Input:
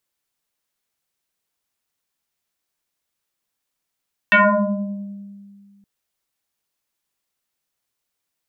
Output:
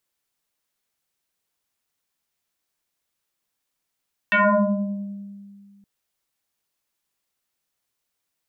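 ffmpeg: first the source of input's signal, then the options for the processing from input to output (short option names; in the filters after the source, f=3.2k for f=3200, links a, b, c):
-f lavfi -i "aevalsrc='0.398*pow(10,-3*t/2.11)*sin(2*PI*200*t+6.3*pow(10,-3*t/1.36)*sin(2*PI*2.05*200*t))':d=1.52:s=44100"
-af "alimiter=limit=-14.5dB:level=0:latency=1"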